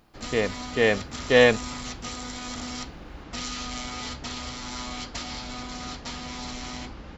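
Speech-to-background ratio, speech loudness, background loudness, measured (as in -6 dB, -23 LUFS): 12.5 dB, -22.5 LUFS, -35.0 LUFS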